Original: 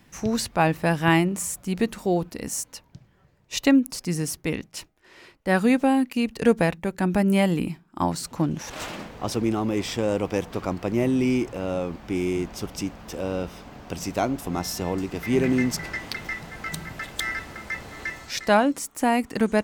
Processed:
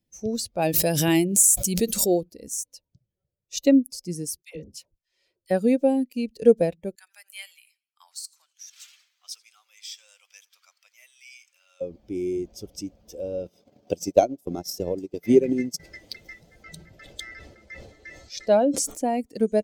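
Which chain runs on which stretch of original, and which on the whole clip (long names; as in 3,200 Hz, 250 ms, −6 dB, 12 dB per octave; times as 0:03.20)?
0:00.62–0:02.21: high-shelf EQ 2,600 Hz +10 dB + background raised ahead of every attack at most 31 dB per second
0:04.42–0:05.51: parametric band 320 Hz −7.5 dB 1.1 octaves + hum removal 129.7 Hz, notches 12 + all-pass dispersion lows, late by 105 ms, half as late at 770 Hz
0:06.95–0:11.81: high-pass filter 1,300 Hz 24 dB per octave + feedback echo with a swinging delay time 83 ms, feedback 51%, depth 85 cents, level −17 dB
0:13.45–0:15.80: high-pass filter 110 Hz + transient designer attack +10 dB, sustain −10 dB
0:16.63–0:19.21: high-shelf EQ 8,700 Hz −11 dB + level that may fall only so fast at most 47 dB per second
whole clip: spectral dynamics exaggerated over time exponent 1.5; drawn EQ curve 160 Hz 0 dB, 570 Hz +11 dB, 1,100 Hz −12 dB, 7,400 Hz +9 dB; level −3.5 dB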